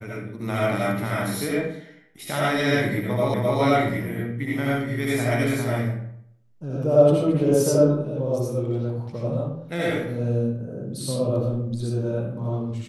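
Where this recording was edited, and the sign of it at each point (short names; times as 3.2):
3.34 repeat of the last 0.26 s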